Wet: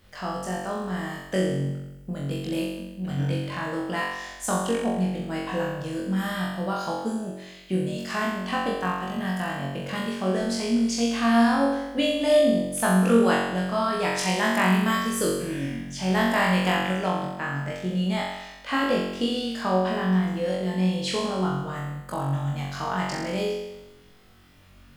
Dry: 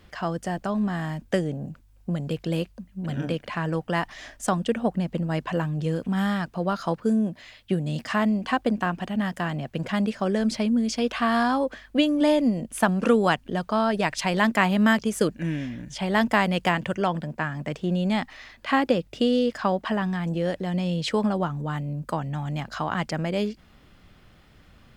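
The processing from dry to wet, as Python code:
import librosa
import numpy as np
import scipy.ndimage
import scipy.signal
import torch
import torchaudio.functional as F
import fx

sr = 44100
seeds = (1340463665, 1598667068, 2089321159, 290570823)

p1 = fx.high_shelf(x, sr, hz=6500.0, db=9.0)
p2 = p1 + fx.room_flutter(p1, sr, wall_m=3.7, rt60_s=0.97, dry=0)
y = p2 * 10.0 ** (-6.0 / 20.0)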